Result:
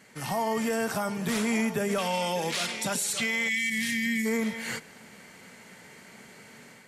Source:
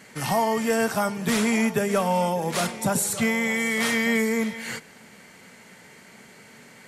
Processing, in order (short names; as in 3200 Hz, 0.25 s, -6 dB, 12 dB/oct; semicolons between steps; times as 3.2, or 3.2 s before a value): 1.98–3.7 weighting filter D; AGC gain up to 6 dB; limiter -13 dBFS, peak gain reduction 10 dB; 3.49–4.26 spectral gain 280–1600 Hz -22 dB; gain -7 dB